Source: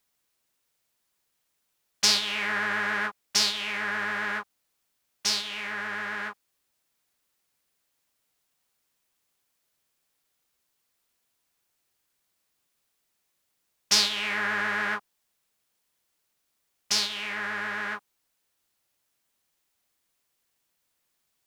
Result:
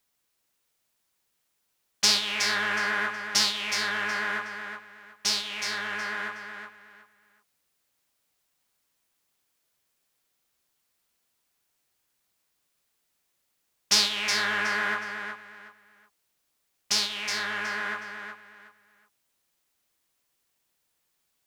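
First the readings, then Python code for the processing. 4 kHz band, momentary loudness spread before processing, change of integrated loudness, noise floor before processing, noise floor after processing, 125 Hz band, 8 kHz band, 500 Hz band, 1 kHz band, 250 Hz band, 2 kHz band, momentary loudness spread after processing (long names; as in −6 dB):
+0.5 dB, 11 LU, +0.5 dB, −77 dBFS, −76 dBFS, −0.5 dB, +0.5 dB, +0.5 dB, +1.0 dB, −0.5 dB, +1.0 dB, 17 LU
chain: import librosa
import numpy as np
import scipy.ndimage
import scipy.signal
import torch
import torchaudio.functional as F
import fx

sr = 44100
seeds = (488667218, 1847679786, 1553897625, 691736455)

y = fx.echo_feedback(x, sr, ms=368, feedback_pct=25, wet_db=-7.5)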